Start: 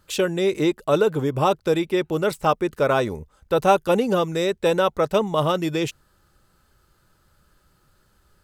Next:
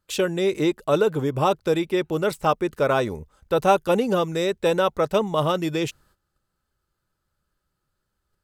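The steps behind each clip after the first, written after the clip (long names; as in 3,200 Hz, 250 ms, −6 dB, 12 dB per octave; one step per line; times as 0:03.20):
noise gate −55 dBFS, range −15 dB
level −1 dB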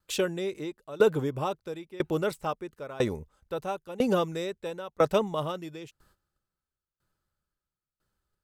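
tremolo with a ramp in dB decaying 1 Hz, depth 22 dB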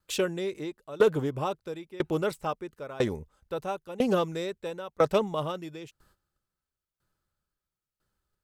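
highs frequency-modulated by the lows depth 0.1 ms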